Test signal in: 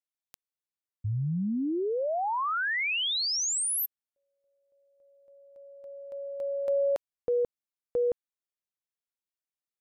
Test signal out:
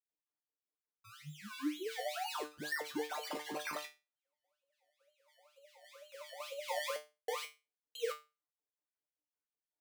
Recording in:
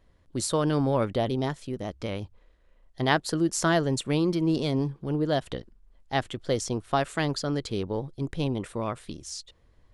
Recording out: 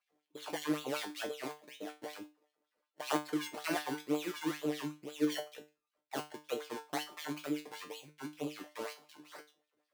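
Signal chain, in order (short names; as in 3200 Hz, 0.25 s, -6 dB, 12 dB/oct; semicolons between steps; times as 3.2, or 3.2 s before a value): decimation with a swept rate 24×, swing 100% 2.1 Hz; LFO high-pass sine 5.3 Hz 270–3700 Hz; resonator 150 Hz, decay 0.26 s, harmonics all, mix 90%; gain -2.5 dB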